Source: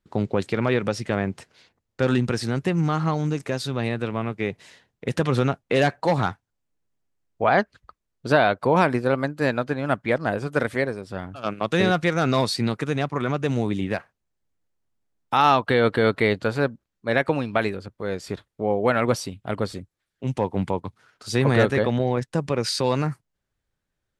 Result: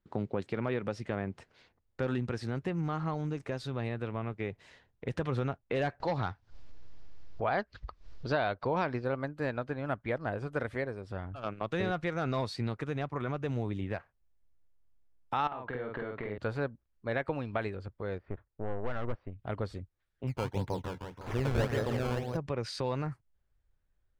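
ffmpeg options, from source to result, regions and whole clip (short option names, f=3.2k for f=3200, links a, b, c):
-filter_complex "[0:a]asettb=1/sr,asplit=3[a][b][c];[a]atrim=end=6.004[d];[b]atrim=start=6:end=9.06,asetpts=PTS-STARTPTS,afade=t=in:d=0.004:c=qsin,afade=t=out:st=3.056:d=0.004:c=qsin,acompressor=mode=upward:threshold=-27dB:ratio=2.5:attack=3.2:release=140:knee=2.83:detection=peak,lowpass=f=5k:t=q:w=2.3[e];[c]atrim=start=9.056[f];[d][e]acrossfade=d=0.004:c1=hsin:c2=qsin[g];[g][f]acrossfade=d=0.004:c1=qsin:c2=hsin,asettb=1/sr,asplit=3[h][i][j];[h]atrim=end=15.474[k];[i]atrim=start=15.47:end=16.38,asetpts=PTS-STARTPTS,afade=t=in:d=0.004:c=qsin,afade=t=out:st=0.906:d=0.004:c=qsin,highpass=120,lowpass=2.2k,acompressor=threshold=-26dB:ratio=8:attack=3.2:release=140:knee=1:detection=peak,asplit=2[l][m];[m]adelay=48,volume=-2.5dB[n];[l][n]amix=inputs=2:normalize=0,atrim=end_sample=40131[o];[j]atrim=start=16.376[p];[k][o]acrossfade=d=0.004:c1=hsin:c2=qsin[q];[q][p]acrossfade=d=0.004:c1=qsin:c2=hsin,asettb=1/sr,asplit=3[r][s][t];[r]atrim=end=18.184[u];[s]atrim=start=18.18:end=19.39,asetpts=PTS-STARTPTS,afade=t=in:d=0.004:c=qsin,afade=t=out:st=1.206:d=0.004:c=qsin,lowpass=f=2k:w=0.5412,lowpass=f=2k:w=1.3066,aeval=exprs='(tanh(10*val(0)+0.75)-tanh(0.75))/10':c=same[v];[t]atrim=start=19.386[w];[u][v]acrossfade=d=0.004:c1=hsin:c2=qsin[x];[x][w]acrossfade=d=0.004:c1=qsin:c2=hsin,asettb=1/sr,asplit=3[y][z][aa];[y]atrim=end=20.274[ab];[z]atrim=start=20.27:end=22.37,asetpts=PTS-STARTPTS,afade=t=in:d=0.004:c=qsin,afade=t=out:st=2.096:d=0.004:c=qsin,aecho=1:1:166|332|498|664|830:0.501|0.21|0.0884|0.0371|0.0156,atrim=end_sample=92610,acrusher=samples=16:mix=1:aa=0.000001:lfo=1:lforange=16:lforate=1.8[ac];[aa]atrim=start=22.366[ad];[ab][ac]acrossfade=d=0.004:c1=hsin:c2=qsin[ae];[ae][ad]acrossfade=d=0.004:c1=qsin:c2=hsin,lowpass=f=2.2k:p=1,asubboost=boost=4.5:cutoff=79,acompressor=threshold=-38dB:ratio=1.5,volume=-3dB"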